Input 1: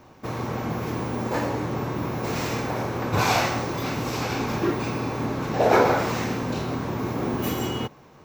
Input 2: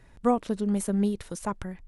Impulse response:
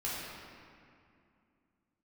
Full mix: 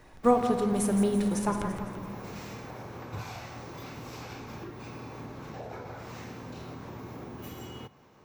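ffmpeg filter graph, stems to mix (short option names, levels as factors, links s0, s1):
-filter_complex "[0:a]acrossover=split=140[s0][s1];[s1]acompressor=threshold=0.0251:ratio=10[s2];[s0][s2]amix=inputs=2:normalize=0,volume=0.422,asplit=2[s3][s4];[s4]volume=0.0708[s5];[1:a]volume=1,asplit=3[s6][s7][s8];[s7]volume=0.422[s9];[s8]volume=0.422[s10];[2:a]atrim=start_sample=2205[s11];[s5][s9]amix=inputs=2:normalize=0[s12];[s12][s11]afir=irnorm=-1:irlink=0[s13];[s10]aecho=0:1:168|336|504|672|840|1008|1176:1|0.47|0.221|0.104|0.0488|0.0229|0.0108[s14];[s3][s6][s13][s14]amix=inputs=4:normalize=0,lowshelf=f=260:g=-4.5"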